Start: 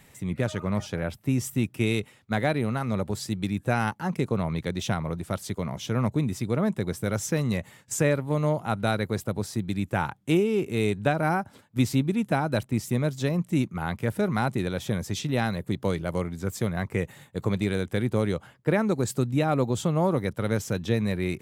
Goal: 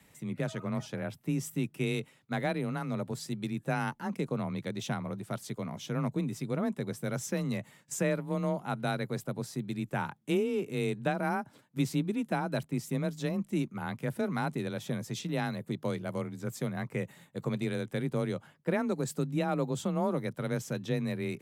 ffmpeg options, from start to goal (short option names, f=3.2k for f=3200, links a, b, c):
-af "afreqshift=24,volume=-6.5dB"